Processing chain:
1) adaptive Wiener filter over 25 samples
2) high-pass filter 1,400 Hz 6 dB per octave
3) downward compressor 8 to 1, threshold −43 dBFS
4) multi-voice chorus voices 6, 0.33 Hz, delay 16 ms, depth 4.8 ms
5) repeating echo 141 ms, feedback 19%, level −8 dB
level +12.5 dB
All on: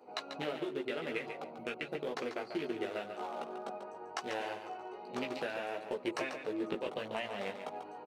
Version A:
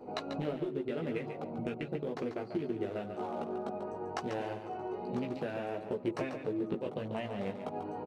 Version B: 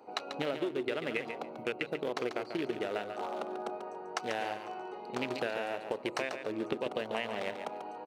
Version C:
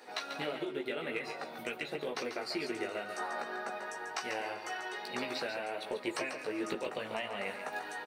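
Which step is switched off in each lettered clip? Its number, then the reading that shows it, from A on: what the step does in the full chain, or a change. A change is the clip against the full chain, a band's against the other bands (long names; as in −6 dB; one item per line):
2, 125 Hz band +11.0 dB
4, change in crest factor +2.0 dB
1, 8 kHz band +6.5 dB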